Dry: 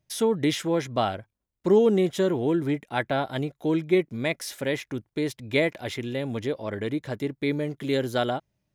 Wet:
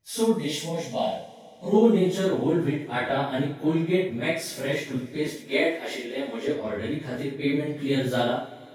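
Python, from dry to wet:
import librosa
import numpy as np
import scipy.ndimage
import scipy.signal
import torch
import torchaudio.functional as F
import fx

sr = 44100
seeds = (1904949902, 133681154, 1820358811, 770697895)

y = fx.phase_scramble(x, sr, seeds[0], window_ms=100)
y = fx.fixed_phaser(y, sr, hz=350.0, stages=6, at=(0.4, 1.73), fade=0.02)
y = fx.highpass(y, sr, hz=260.0, slope=24, at=(5.27, 6.48))
y = y + 10.0 ** (-8.5 / 20.0) * np.pad(y, (int(73 * sr / 1000.0), 0))[:len(y)]
y = fx.rev_double_slope(y, sr, seeds[1], early_s=0.27, late_s=3.6, knee_db=-18, drr_db=8.0)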